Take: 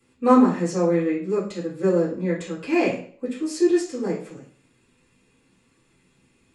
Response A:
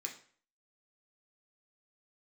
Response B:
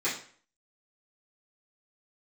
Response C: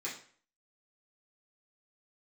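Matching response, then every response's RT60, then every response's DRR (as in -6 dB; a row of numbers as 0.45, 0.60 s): B; 0.50, 0.50, 0.50 s; 0.0, -13.0, -8.5 dB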